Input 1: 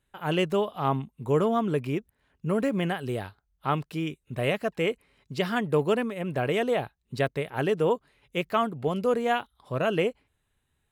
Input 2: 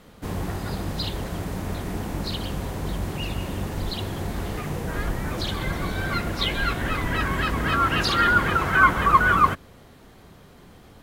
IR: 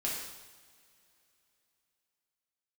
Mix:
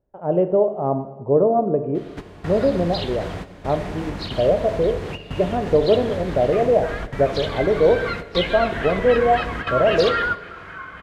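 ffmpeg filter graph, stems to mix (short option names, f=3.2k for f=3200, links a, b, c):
-filter_complex "[0:a]lowpass=f=610:t=q:w=3.4,volume=-0.5dB,asplit=3[a][b][c];[b]volume=-8.5dB[d];[1:a]lowpass=2.4k,acompressor=threshold=-32dB:ratio=2.5,crystalizer=i=6.5:c=0,adelay=1950,volume=1.5dB,asplit=2[e][f];[f]volume=-16dB[g];[c]apad=whole_len=572116[h];[e][h]sidechaingate=range=-33dB:threshold=-52dB:ratio=16:detection=peak[i];[2:a]atrim=start_sample=2205[j];[d][g]amix=inputs=2:normalize=0[k];[k][j]afir=irnorm=-1:irlink=0[l];[a][i][l]amix=inputs=3:normalize=0"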